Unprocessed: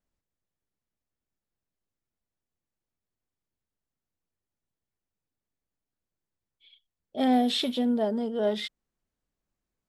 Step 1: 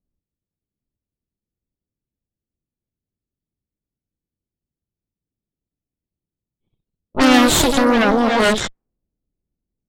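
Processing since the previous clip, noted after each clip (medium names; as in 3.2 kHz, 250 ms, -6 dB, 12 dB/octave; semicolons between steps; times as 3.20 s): Chebyshev shaper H 8 -6 dB, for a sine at -14.5 dBFS; ever faster or slower copies 798 ms, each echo +2 st, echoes 3, each echo -6 dB; level-controlled noise filter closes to 330 Hz, open at -18.5 dBFS; trim +6.5 dB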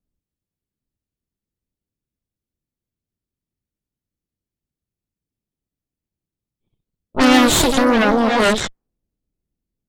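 vibrato 4.1 Hz 47 cents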